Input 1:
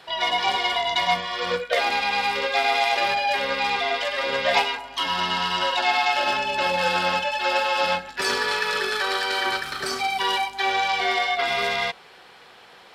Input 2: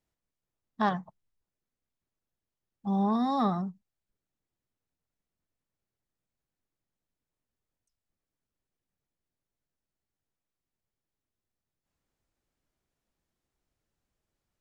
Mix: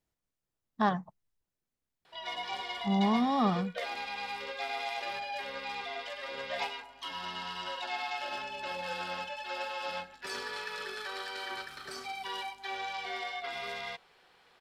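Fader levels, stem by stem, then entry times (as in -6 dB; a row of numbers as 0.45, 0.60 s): -15.0, -0.5 dB; 2.05, 0.00 s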